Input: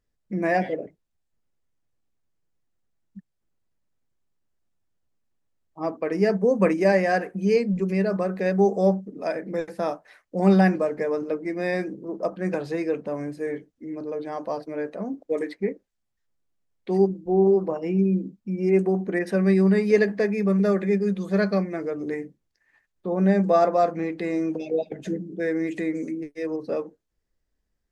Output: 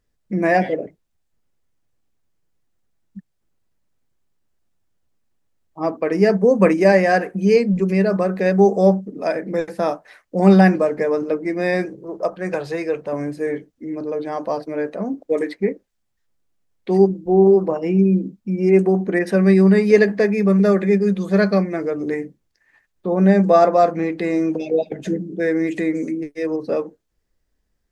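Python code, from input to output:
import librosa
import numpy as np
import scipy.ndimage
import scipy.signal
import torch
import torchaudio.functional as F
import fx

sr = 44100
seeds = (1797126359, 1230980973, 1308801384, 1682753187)

y = fx.peak_eq(x, sr, hz=240.0, db=-14.5, octaves=0.7, at=(11.85, 13.13))
y = y * 10.0 ** (6.0 / 20.0)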